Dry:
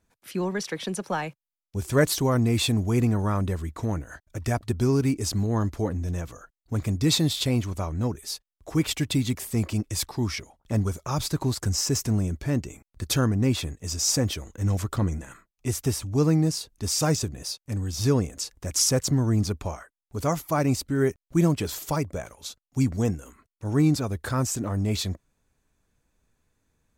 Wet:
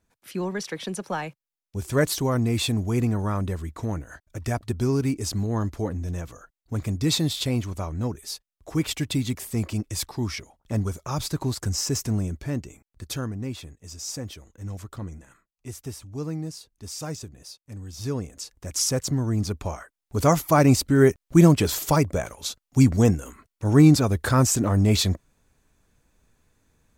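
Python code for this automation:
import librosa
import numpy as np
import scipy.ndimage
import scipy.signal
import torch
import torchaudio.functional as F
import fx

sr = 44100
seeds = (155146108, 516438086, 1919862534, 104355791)

y = fx.gain(x, sr, db=fx.line((12.21, -1.0), (13.59, -10.0), (17.65, -10.0), (18.84, -2.0), (19.35, -2.0), (20.21, 6.5)))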